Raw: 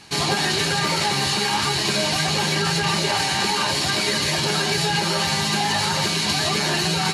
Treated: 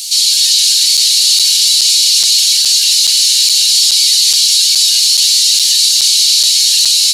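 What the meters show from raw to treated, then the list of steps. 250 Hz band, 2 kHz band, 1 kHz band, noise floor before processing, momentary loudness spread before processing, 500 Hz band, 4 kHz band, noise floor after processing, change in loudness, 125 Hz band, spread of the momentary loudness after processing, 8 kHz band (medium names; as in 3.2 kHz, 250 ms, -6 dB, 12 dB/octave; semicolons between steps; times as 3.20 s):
under -30 dB, -4.0 dB, under -25 dB, -23 dBFS, 0 LU, under -30 dB, +15.0 dB, -11 dBFS, +13.5 dB, under -35 dB, 0 LU, +18.0 dB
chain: one-bit delta coder 64 kbps, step -29.5 dBFS; inverse Chebyshev high-pass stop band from 1.2 kHz, stop band 60 dB; level rider; loudness maximiser +18 dB; crackling interface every 0.42 s, samples 256, zero, from 0.97 s; trim -1 dB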